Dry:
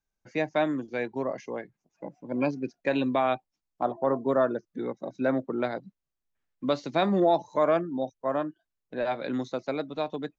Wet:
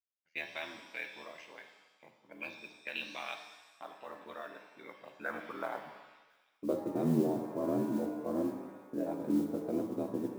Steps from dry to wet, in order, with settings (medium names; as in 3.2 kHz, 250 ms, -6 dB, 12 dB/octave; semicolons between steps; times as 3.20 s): gate -45 dBFS, range -14 dB; peaking EQ 160 Hz +11.5 dB 0.57 oct; peak limiter -17.5 dBFS, peak gain reduction 6 dB; ring modulator 41 Hz; band-pass sweep 2.8 kHz -> 290 Hz, 4.63–7.13 s; modulation noise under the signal 28 dB; feedback echo behind a high-pass 1051 ms, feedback 60%, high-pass 3.3 kHz, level -21 dB; pitch-shifted reverb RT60 1.1 s, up +7 st, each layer -8 dB, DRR 5.5 dB; trim +3.5 dB